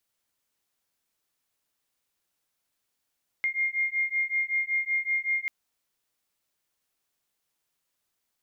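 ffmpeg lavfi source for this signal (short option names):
-f lavfi -i "aevalsrc='0.0398*(sin(2*PI*2120*t)+sin(2*PI*2125.3*t))':d=2.04:s=44100"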